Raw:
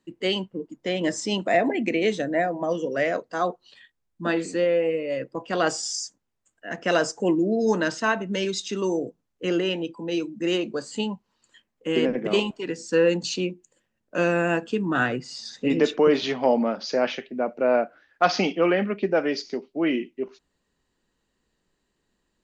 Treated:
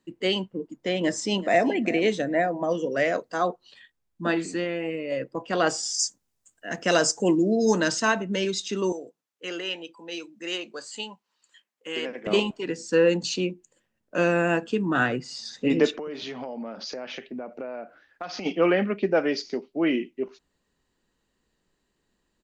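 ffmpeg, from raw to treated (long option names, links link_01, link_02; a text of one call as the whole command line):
ffmpeg -i in.wav -filter_complex "[0:a]asplit=2[link_01][link_02];[link_02]afade=type=in:start_time=0.96:duration=0.01,afade=type=out:start_time=1.71:duration=0.01,aecho=0:1:380|760:0.149624|0.0224435[link_03];[link_01][link_03]amix=inputs=2:normalize=0,asettb=1/sr,asplit=3[link_04][link_05][link_06];[link_04]atrim=end=2.964[link_07];[link_05]atrim=start=2.96:end=3.37,asetpts=PTS-STARTPTS,afade=type=in:duration=0.004:curve=qsin,afade=type=out:start_time=0.406:duration=0.004:curve=qsin,highshelf=frequency=5200:gain=6[link_08];[link_06]atrim=start=3.366[link_09];[link_07][link_08]acrossfade=duration=0.004:curve1=hsin:curve2=qsin[link_10];[link_10][link_09]acrossfade=duration=0.004:curve1=qsin:curve2=hsin,asettb=1/sr,asplit=3[link_11][link_12][link_13];[link_11]atrim=end=4.344[link_14];[link_12]atrim=start=4.34:end=5.12,asetpts=PTS-STARTPTS,afade=type=in:duration=0.004:curve=qsin,afade=type=out:start_time=0.776:duration=0.004:curve=qsin,equalizer=frequency=510:width=6.2:gain=-12[link_15];[link_13]atrim=start=5.116[link_16];[link_14][link_15]acrossfade=duration=0.004:curve1=hsin:curve2=qsin[link_17];[link_17][link_16]acrossfade=duration=0.004:curve1=qsin:curve2=hsin,asettb=1/sr,asplit=3[link_18][link_19][link_20];[link_18]atrim=end=5.994[link_21];[link_19]atrim=start=5.99:end=8.21,asetpts=PTS-STARTPTS,afade=type=in:duration=0.004:curve=qsin,afade=type=out:start_time=2.216:duration=0.004:curve=qsin,bass=frequency=250:gain=2,treble=frequency=4000:gain=10[link_22];[link_20]atrim=start=8.206[link_23];[link_21][link_22]acrossfade=duration=0.004:curve1=hsin:curve2=qsin[link_24];[link_24][link_23]acrossfade=duration=0.004:curve1=qsin:curve2=hsin,asettb=1/sr,asplit=3[link_25][link_26][link_27];[link_25]atrim=end=8.924[link_28];[link_26]atrim=start=8.92:end=12.27,asetpts=PTS-STARTPTS,afade=type=in:duration=0.004:curve=qsin,afade=type=out:start_time=3.346:duration=0.004:curve=qsin,highpass=frequency=1300:poles=1[link_29];[link_27]atrim=start=12.266[link_30];[link_28][link_29]acrossfade=duration=0.004:curve1=hsin:curve2=qsin[link_31];[link_31][link_30]acrossfade=duration=0.004:curve1=qsin:curve2=hsin,asplit=3[link_32][link_33][link_34];[link_32]afade=type=out:start_time=15.9:duration=0.02[link_35];[link_33]acompressor=threshold=-31dB:ratio=10:attack=3.2:release=140:knee=1:detection=peak,afade=type=in:start_time=15.9:duration=0.02,afade=type=out:start_time=18.45:duration=0.02[link_36];[link_34]afade=type=in:start_time=18.45:duration=0.02[link_37];[link_35][link_36][link_37]amix=inputs=3:normalize=0" out.wav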